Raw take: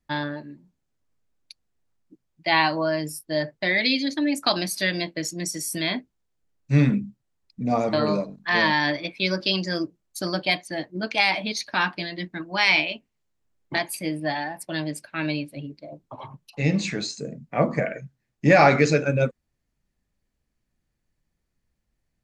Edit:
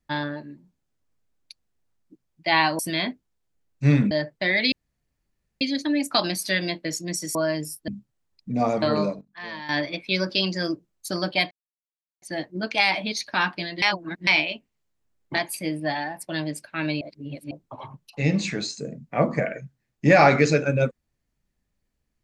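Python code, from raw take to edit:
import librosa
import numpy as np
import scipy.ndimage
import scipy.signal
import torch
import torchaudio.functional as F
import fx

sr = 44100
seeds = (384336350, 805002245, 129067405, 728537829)

y = fx.edit(x, sr, fx.swap(start_s=2.79, length_s=0.53, other_s=5.67, other_length_s=1.32),
    fx.insert_room_tone(at_s=3.93, length_s=0.89),
    fx.fade_down_up(start_s=8.03, length_s=1.06, db=-15.5, fade_s=0.29, curve='log'),
    fx.insert_silence(at_s=10.62, length_s=0.71),
    fx.reverse_span(start_s=12.22, length_s=0.45),
    fx.reverse_span(start_s=15.41, length_s=0.5), tone=tone)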